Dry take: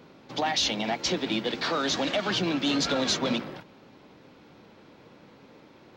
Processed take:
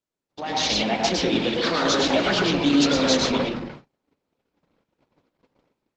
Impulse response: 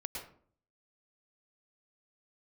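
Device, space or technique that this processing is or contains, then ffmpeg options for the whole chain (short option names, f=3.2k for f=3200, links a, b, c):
speakerphone in a meeting room: -filter_complex "[1:a]atrim=start_sample=2205[a];[0:a][a]afir=irnorm=-1:irlink=0,dynaudnorm=f=370:g=3:m=13.5dB,agate=range=-34dB:threshold=-34dB:ratio=16:detection=peak,volume=-5dB" -ar 48000 -c:a libopus -b:a 12k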